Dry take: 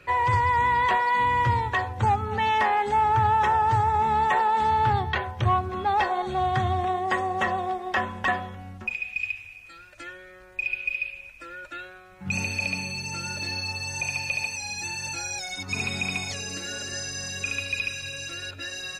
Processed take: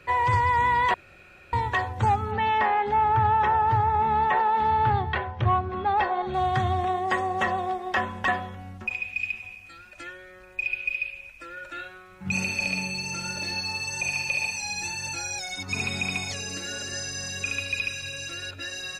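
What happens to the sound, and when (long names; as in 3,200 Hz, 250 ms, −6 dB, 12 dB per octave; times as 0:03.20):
0:00.94–0:01.53: fill with room tone
0:02.31–0:06.34: Gaussian smoothing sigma 2 samples
0:08.38–0:09.03: delay throw 520 ms, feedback 45%, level −15.5 dB
0:11.52–0:14.93: double-tracking delay 48 ms −6 dB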